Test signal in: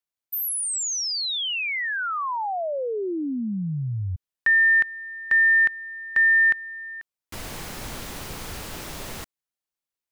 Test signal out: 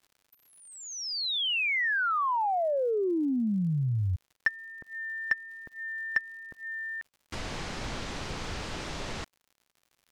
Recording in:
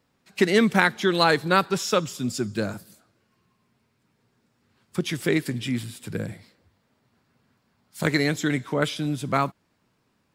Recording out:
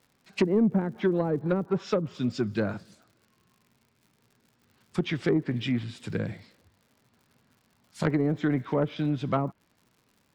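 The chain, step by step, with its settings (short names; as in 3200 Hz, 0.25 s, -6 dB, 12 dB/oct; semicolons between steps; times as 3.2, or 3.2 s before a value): treble ducked by the level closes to 380 Hz, closed at -16.5 dBFS; LPF 6400 Hz 12 dB/oct; soft clip -13.5 dBFS; crackle 120/s -50 dBFS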